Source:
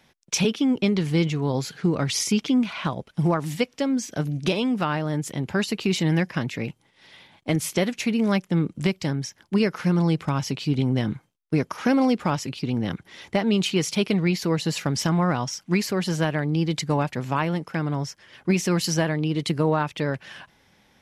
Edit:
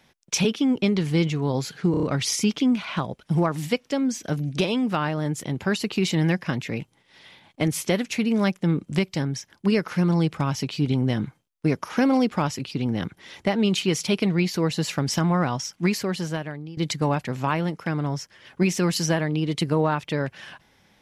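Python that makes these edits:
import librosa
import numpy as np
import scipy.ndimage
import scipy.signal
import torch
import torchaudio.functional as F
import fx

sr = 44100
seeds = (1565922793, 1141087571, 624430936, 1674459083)

y = fx.edit(x, sr, fx.stutter(start_s=1.91, slice_s=0.03, count=5),
    fx.fade_out_to(start_s=15.8, length_s=0.85, floor_db=-20.0), tone=tone)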